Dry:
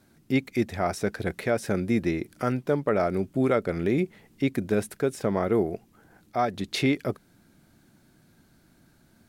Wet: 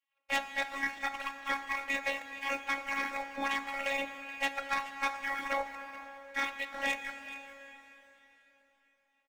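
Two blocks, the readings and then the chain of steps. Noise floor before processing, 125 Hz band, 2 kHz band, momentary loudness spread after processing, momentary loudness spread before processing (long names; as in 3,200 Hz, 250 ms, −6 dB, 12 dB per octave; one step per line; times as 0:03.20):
−61 dBFS, below −30 dB, +3.5 dB, 11 LU, 5 LU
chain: reverb reduction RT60 1.4 s
gate on every frequency bin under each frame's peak −30 dB weak
low-pass filter 2,500 Hz 24 dB per octave
low-shelf EQ 120 Hz −9 dB
hum removal 59.64 Hz, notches 28
leveller curve on the samples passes 3
in parallel at −2 dB: speech leveller 0.5 s
on the sum: phases set to zero 275 Hz
single-tap delay 428 ms −15.5 dB
dense smooth reverb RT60 4 s, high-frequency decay 0.95×, DRR 9 dB
level +7.5 dB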